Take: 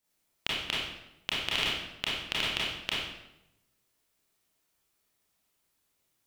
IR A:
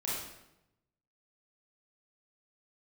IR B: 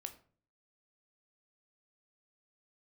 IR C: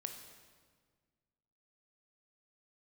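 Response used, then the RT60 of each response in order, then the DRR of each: A; 0.90 s, 0.45 s, 1.6 s; -7.0 dB, 7.0 dB, 5.0 dB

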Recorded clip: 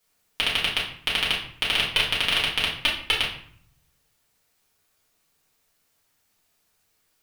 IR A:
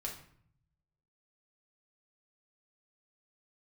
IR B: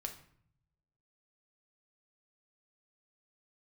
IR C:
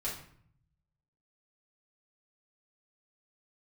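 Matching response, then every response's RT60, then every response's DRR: C; 0.60 s, 0.60 s, 0.60 s; -1.5 dB, 3.5 dB, -7.0 dB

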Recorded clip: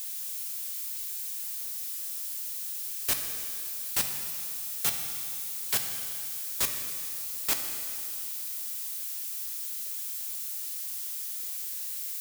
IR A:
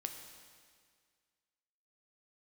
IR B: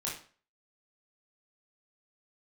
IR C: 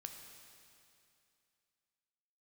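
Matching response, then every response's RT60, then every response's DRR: C; 1.9 s, 0.40 s, 2.6 s; 4.5 dB, -5.5 dB, 4.0 dB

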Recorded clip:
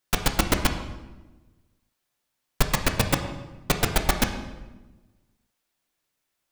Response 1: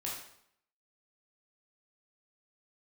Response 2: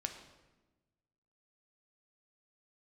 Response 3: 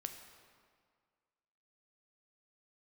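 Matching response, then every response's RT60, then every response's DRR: 2; 0.70 s, 1.2 s, 1.9 s; -5.0 dB, 4.5 dB, 5.5 dB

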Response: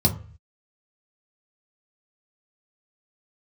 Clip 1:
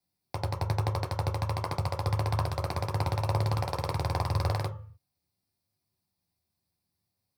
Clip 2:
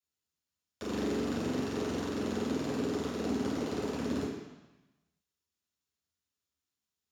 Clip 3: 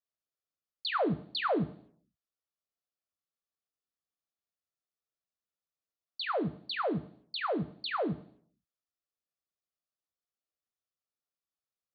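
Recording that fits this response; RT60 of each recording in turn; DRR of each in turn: 1; 0.40 s, 1.0 s, 0.60 s; 1.0 dB, -12.0 dB, 9.5 dB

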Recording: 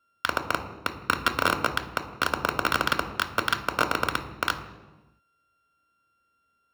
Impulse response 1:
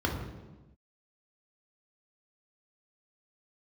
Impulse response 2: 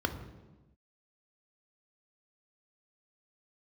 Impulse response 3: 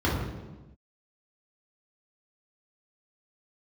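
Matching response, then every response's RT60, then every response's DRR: 2; no single decay rate, 1.1 s, no single decay rate; 0.0 dB, 7.0 dB, -6.0 dB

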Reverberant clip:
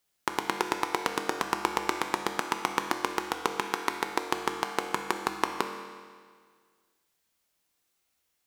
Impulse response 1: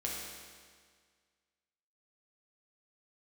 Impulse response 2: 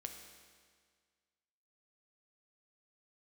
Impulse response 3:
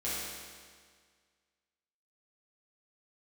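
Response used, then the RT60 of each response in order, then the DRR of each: 2; 1.8 s, 1.8 s, 1.8 s; -4.0 dB, 4.0 dB, -10.5 dB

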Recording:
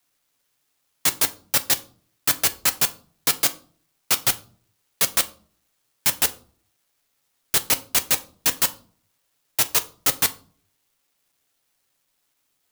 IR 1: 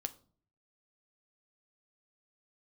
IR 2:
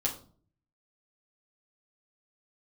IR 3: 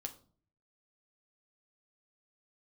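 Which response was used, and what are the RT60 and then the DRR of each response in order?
1; 0.45 s, 0.45 s, 0.45 s; 8.0 dB, -5.0 dB, 3.5 dB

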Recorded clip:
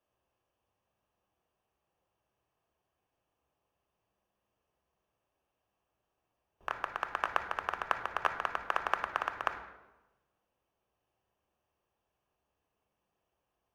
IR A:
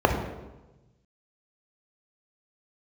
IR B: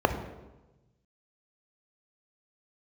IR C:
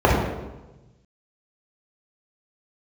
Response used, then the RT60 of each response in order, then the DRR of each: B; 1.1 s, 1.1 s, 1.1 s; 2.5 dB, 6.5 dB, -5.0 dB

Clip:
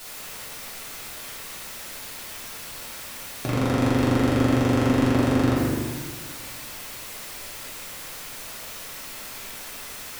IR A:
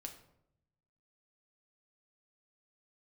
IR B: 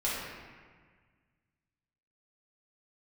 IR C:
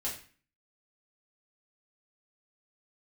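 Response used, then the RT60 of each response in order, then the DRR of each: B; 0.75 s, 1.6 s, 0.40 s; 3.5 dB, -8.5 dB, -6.5 dB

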